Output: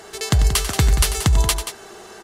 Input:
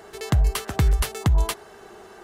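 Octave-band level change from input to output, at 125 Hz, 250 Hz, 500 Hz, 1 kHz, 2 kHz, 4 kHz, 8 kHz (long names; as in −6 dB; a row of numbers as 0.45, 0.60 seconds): +3.5, +3.0, +3.5, +4.5, +6.5, +10.5, +12.0 decibels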